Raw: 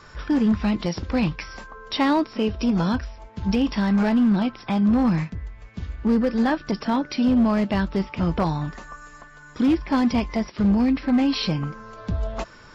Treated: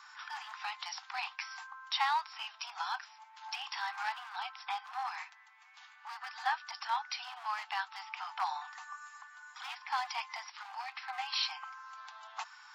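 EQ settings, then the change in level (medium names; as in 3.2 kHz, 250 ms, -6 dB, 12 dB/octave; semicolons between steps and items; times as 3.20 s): Chebyshev high-pass 750 Hz, order 8; -5.0 dB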